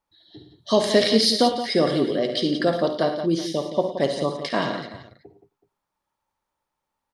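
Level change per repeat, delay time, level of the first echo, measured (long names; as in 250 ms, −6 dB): repeats not evenly spaced, 54 ms, −11.0 dB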